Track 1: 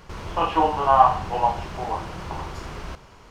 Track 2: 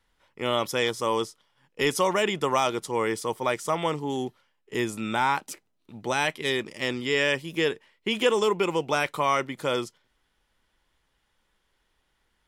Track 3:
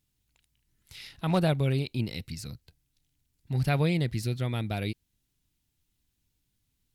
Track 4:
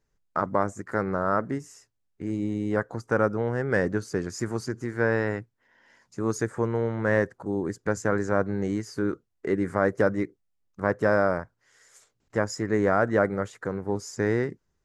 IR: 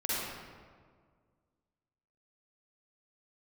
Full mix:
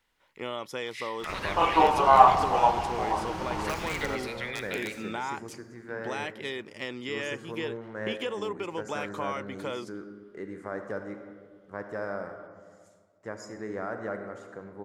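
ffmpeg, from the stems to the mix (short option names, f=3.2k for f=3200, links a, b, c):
-filter_complex "[0:a]adelay=1200,volume=-2dB,asplit=2[a][b];[b]volume=-15dB[c];[1:a]volume=-2dB[d];[2:a]alimiter=limit=-18dB:level=0:latency=1,highpass=f=1.9k:t=q:w=4.8,aeval=exprs='(mod(11.2*val(0)+1,2)-1)/11.2':c=same,volume=2.5dB,asplit=2[e][f];[f]volume=-22.5dB[g];[3:a]adelay=900,volume=-14dB,asplit=2[h][i];[i]volume=-11dB[j];[d][e]amix=inputs=2:normalize=0,lowpass=f=3.7k:p=1,acompressor=threshold=-32dB:ratio=3,volume=0dB[k];[4:a]atrim=start_sample=2205[l];[c][g][j]amix=inputs=3:normalize=0[m];[m][l]afir=irnorm=-1:irlink=0[n];[a][h][k][n]amix=inputs=4:normalize=0,lowshelf=f=150:g=-7.5"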